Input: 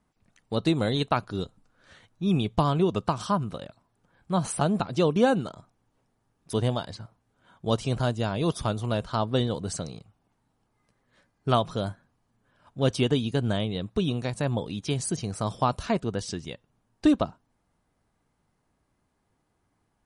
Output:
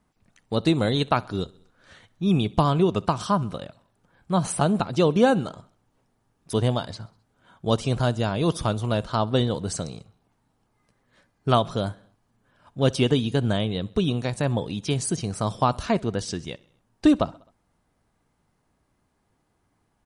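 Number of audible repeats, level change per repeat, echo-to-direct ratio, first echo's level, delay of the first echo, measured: 3, -4.5 dB, -22.5 dB, -24.0 dB, 65 ms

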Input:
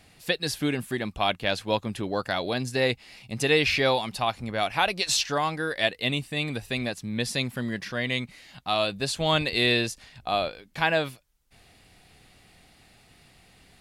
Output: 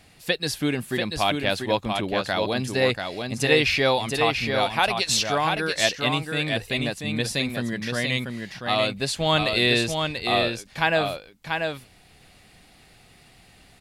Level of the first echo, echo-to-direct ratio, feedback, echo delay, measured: -5.0 dB, -5.0 dB, no steady repeat, 0.688 s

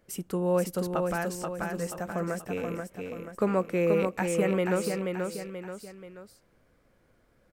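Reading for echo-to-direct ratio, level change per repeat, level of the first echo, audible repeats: -3.5 dB, -7.0 dB, -4.5 dB, 3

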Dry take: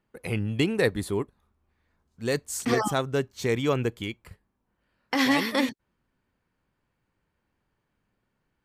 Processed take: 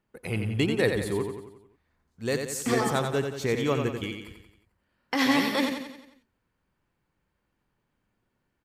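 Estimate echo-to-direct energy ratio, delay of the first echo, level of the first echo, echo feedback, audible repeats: -4.5 dB, 89 ms, -6.0 dB, 51%, 5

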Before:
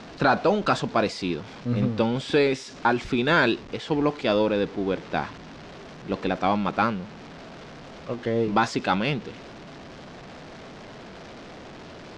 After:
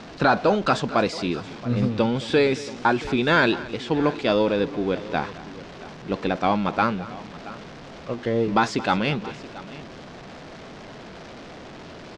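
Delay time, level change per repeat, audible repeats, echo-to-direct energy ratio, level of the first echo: 0.221 s, no steady repeat, 2, -15.0 dB, -18.0 dB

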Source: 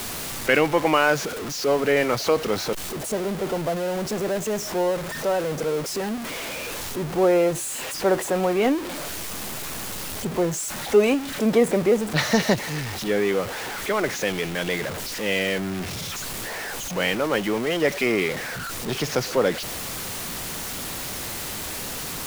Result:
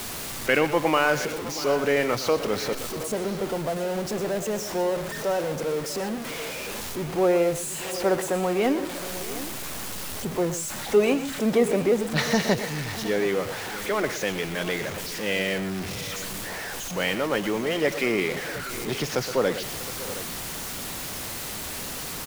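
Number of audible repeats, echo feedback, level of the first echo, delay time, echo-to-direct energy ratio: 3, no steady repeat, -13.0 dB, 0.12 s, -10.0 dB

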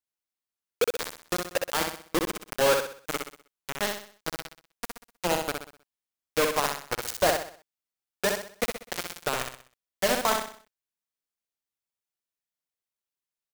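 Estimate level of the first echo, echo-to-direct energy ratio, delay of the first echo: -4.5 dB, -3.5 dB, 63 ms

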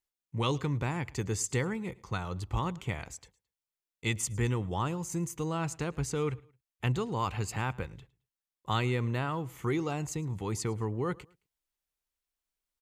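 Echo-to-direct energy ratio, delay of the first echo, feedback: -23.0 dB, 0.109 s, 32%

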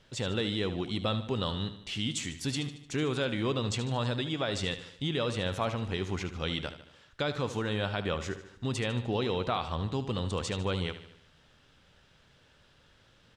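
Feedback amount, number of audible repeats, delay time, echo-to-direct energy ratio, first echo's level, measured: 52%, 5, 75 ms, -10.5 dB, -12.0 dB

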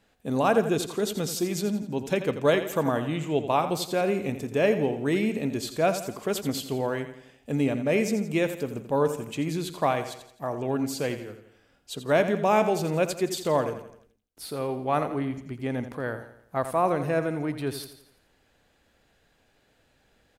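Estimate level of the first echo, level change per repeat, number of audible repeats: -11.0 dB, -7.0 dB, 4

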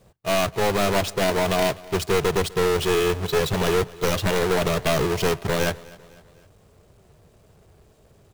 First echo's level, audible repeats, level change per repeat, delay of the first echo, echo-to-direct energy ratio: -21.5 dB, 3, -6.0 dB, 0.251 s, -20.5 dB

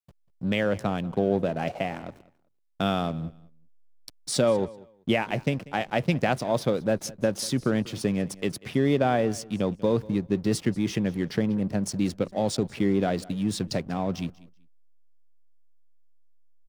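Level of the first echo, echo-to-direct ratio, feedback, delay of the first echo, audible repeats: -21.0 dB, -21.0 dB, 20%, 0.191 s, 2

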